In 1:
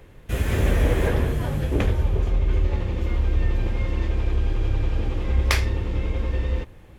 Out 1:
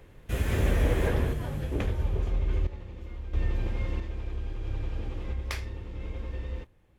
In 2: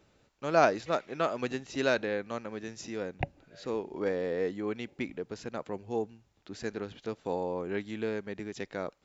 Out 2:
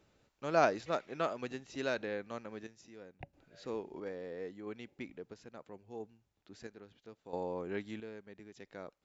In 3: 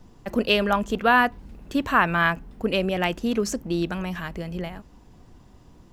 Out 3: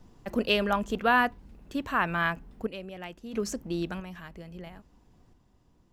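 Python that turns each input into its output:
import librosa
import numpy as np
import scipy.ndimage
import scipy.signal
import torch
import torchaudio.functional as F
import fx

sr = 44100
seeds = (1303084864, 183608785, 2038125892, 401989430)

y = fx.tremolo_random(x, sr, seeds[0], hz=1.5, depth_pct=75)
y = y * 10.0 ** (-4.5 / 20.0)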